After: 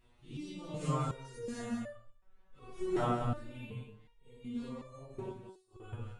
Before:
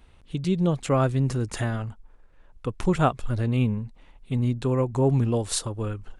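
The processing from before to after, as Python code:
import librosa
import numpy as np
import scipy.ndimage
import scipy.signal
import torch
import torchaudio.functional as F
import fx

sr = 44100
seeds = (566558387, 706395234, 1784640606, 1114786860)

y = fx.phase_scramble(x, sr, seeds[0], window_ms=200)
y = fx.rider(y, sr, range_db=4, speed_s=2.0)
y = fx.gate_flip(y, sr, shuts_db=-19.0, range_db=-34, at=(5.28, 5.8))
y = y + 10.0 ** (-6.5 / 20.0) * np.pad(y, (int(179 * sr / 1000.0), 0))[:len(y)]
y = fx.resonator_held(y, sr, hz=2.7, low_hz=120.0, high_hz=590.0)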